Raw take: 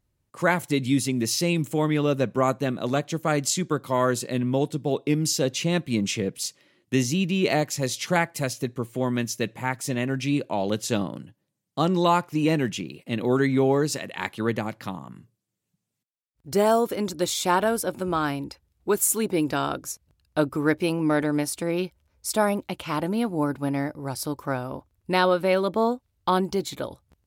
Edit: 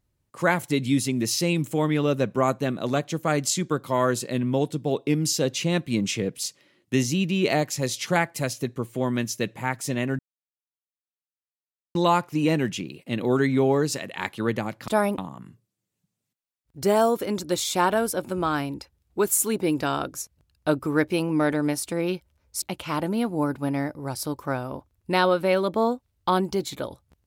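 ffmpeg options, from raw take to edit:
-filter_complex "[0:a]asplit=6[a][b][c][d][e][f];[a]atrim=end=10.19,asetpts=PTS-STARTPTS,afade=t=out:st=10.186:d=0.004:c=hsin[g];[b]atrim=start=10.19:end=11.95,asetpts=PTS-STARTPTS,volume=0[h];[c]atrim=start=11.95:end=14.882,asetpts=PTS-STARTPTS,afade=t=in:d=0.004:c=hsin[i];[d]atrim=start=22.318:end=22.622[j];[e]atrim=start=14.878:end=22.322[k];[f]atrim=start=22.618[l];[g][h][i]concat=n=3:v=0:a=1[m];[m][j]acrossfade=d=0.004:c1=hsin:c2=hsin[n];[n][k]acrossfade=d=0.004:c1=hsin:c2=hsin[o];[o][l]acrossfade=d=0.004:c1=hsin:c2=hsin"

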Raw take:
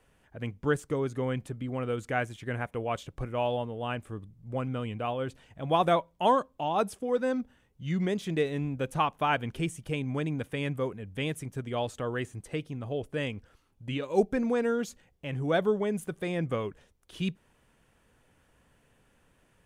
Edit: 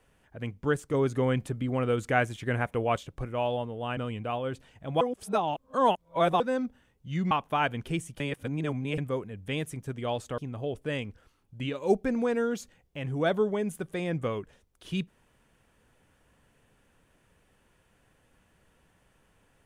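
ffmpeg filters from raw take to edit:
-filter_complex "[0:a]asplit=10[a][b][c][d][e][f][g][h][i][j];[a]atrim=end=0.942[k];[b]atrim=start=0.938:end=2.982,asetpts=PTS-STARTPTS,volume=4.5dB[l];[c]atrim=start=2.978:end=3.972[m];[d]atrim=start=4.718:end=5.762[n];[e]atrim=start=5.758:end=7.152,asetpts=PTS-STARTPTS,areverse[o];[f]atrim=start=7.148:end=8.062[p];[g]atrim=start=8.998:end=9.892[q];[h]atrim=start=9.888:end=10.672,asetpts=PTS-STARTPTS,areverse[r];[i]atrim=start=10.668:end=12.072[s];[j]atrim=start=12.658[t];[k][l]acrossfade=d=0.004:c1=hsin:c2=hsin[u];[u][m]acrossfade=d=0.004:c1=hsin:c2=hsin[v];[v][n]acrossfade=d=0.004:c1=hsin:c2=hsin[w];[w][o]acrossfade=d=0.004:c1=hsin:c2=hsin[x];[x][p]acrossfade=d=0.004:c1=hsin:c2=hsin[y];[y][q]acrossfade=d=0.004:c1=hsin:c2=hsin[z];[z][r]acrossfade=d=0.004:c1=hsin:c2=hsin[aa];[aa][s]acrossfade=d=0.004:c1=hsin:c2=hsin[ab];[ab][t]acrossfade=d=0.004:c1=hsin:c2=hsin"

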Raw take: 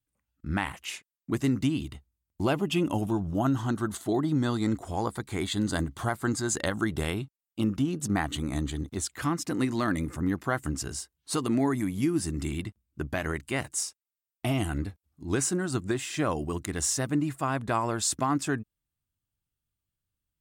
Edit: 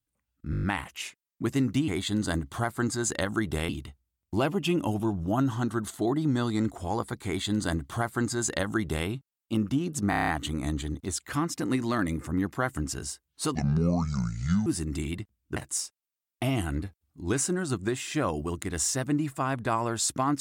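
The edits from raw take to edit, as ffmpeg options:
-filter_complex "[0:a]asplit=18[a][b][c][d][e][f][g][h][i][j][k][l][m][n][o][p][q][r];[a]atrim=end=0.532[s];[b]atrim=start=0.508:end=0.532[t];[c]atrim=start=0.508:end=0.532[u];[d]atrim=start=0.508:end=0.532[v];[e]atrim=start=0.508:end=0.532[w];[f]atrim=start=0.508:end=0.532[x];[g]atrim=start=0.508:end=1.762[y];[h]atrim=start=5.328:end=7.142[z];[i]atrim=start=1.758:end=8.202[aa];[j]atrim=start=8.168:end=8.202[ab];[k]atrim=start=8.168:end=8.202[ac];[l]atrim=start=8.168:end=8.202[ad];[m]atrim=start=8.168:end=8.202[ae];[n]atrim=start=8.168:end=8.202[af];[o]atrim=start=8.168:end=11.444[ag];[p]atrim=start=11.44:end=12.13,asetpts=PTS-STARTPTS,asetrate=27342,aresample=44100,atrim=end_sample=49079,asetpts=PTS-STARTPTS[ah];[q]atrim=start=12.126:end=13.032[ai];[r]atrim=start=13.588[aj];[s][t]acrossfade=d=0.004:c1=hsin:c2=hsin[ak];[ak][u]acrossfade=d=0.004:c1=hsin:c2=hsin[al];[al][v]acrossfade=d=0.004:c1=hsin:c2=hsin[am];[am][w]acrossfade=d=0.004:c1=hsin:c2=hsin[an];[an][x]acrossfade=d=0.004:c1=hsin:c2=hsin[ao];[ao][y]acrossfade=d=0.004:c1=hsin:c2=hsin[ap];[ap][z]acrossfade=d=0.004:c1=hsin:c2=hsin[aq];[aq][aa]acrossfade=d=0.004:c1=hsin:c2=hsin[ar];[ar][ab]acrossfade=d=0.004:c1=hsin:c2=hsin[as];[as][ac]acrossfade=d=0.004:c1=hsin:c2=hsin[at];[at][ad]acrossfade=d=0.004:c1=hsin:c2=hsin[au];[au][ae]acrossfade=d=0.004:c1=hsin:c2=hsin[av];[av][af]acrossfade=d=0.004:c1=hsin:c2=hsin[aw];[aw][ag]acrossfade=d=0.004:c1=hsin:c2=hsin[ax];[ax][ah]acrossfade=d=0.004:c1=hsin:c2=hsin[ay];[ay][ai]acrossfade=d=0.004:c1=hsin:c2=hsin[az];[az][aj]acrossfade=d=0.004:c1=hsin:c2=hsin"

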